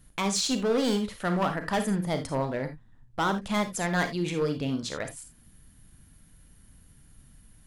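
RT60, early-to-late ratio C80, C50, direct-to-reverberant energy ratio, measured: non-exponential decay, 18.0 dB, 10.0 dB, 7.5 dB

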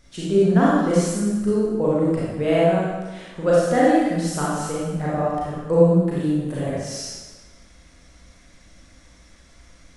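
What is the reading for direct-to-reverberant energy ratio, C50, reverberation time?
−8.0 dB, −3.5 dB, 1.3 s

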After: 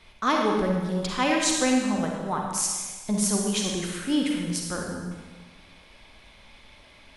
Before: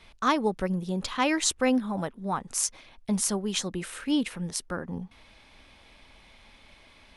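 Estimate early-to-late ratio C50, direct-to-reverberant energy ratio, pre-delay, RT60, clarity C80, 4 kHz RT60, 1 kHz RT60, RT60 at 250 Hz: 1.0 dB, 0.0 dB, 39 ms, 1.3 s, 3.0 dB, 1.3 s, 1.3 s, 1.3 s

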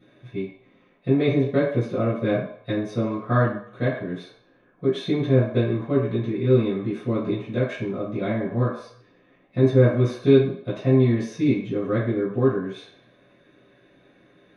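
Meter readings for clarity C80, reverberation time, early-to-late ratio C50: 7.0 dB, 0.60 s, 3.5 dB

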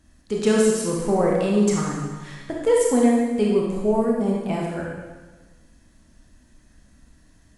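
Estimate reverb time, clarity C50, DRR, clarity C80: 1.3 s, 0.0 dB, −3.0 dB, 3.0 dB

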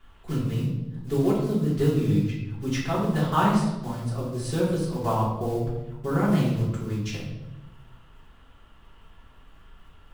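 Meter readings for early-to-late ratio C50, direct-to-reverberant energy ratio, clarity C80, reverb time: 2.0 dB, −8.0 dB, 5.0 dB, 0.95 s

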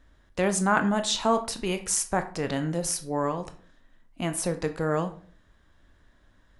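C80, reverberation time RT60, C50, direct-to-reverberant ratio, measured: 17.5 dB, 0.45 s, 13.5 dB, 8.0 dB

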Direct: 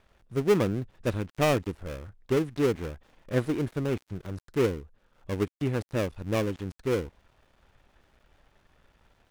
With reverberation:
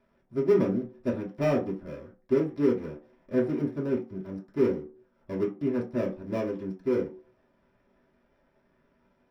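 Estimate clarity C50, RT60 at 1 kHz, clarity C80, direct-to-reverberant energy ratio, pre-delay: 10.0 dB, can't be measured, 15.5 dB, −6.0 dB, 3 ms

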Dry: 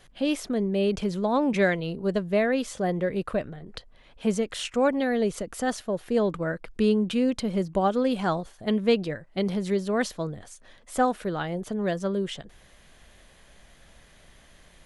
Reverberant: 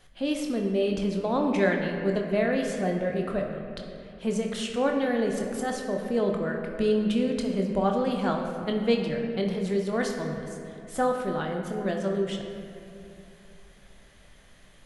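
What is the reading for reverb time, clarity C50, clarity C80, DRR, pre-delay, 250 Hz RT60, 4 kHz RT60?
2.7 s, 4.0 dB, 5.0 dB, 1.5 dB, 20 ms, 3.0 s, 1.6 s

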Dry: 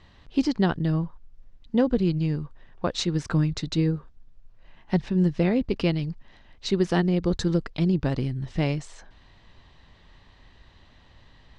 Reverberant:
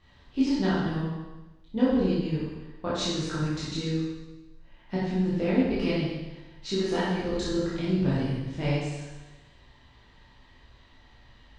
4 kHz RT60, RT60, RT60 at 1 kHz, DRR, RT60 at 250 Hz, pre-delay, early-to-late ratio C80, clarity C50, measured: 1.1 s, 1.1 s, 1.1 s, −9.0 dB, 1.1 s, 15 ms, 1.5 dB, −1.5 dB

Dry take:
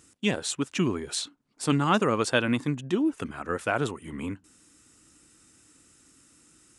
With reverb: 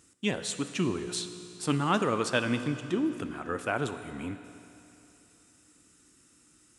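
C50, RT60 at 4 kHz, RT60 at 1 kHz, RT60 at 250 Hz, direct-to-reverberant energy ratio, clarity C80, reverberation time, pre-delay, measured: 10.0 dB, 2.8 s, 2.9 s, 2.9 s, 9.0 dB, 10.5 dB, 2.9 s, 17 ms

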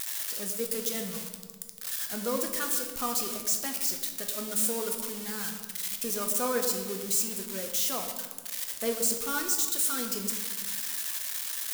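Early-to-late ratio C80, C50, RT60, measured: 8.0 dB, 6.5 dB, 1.6 s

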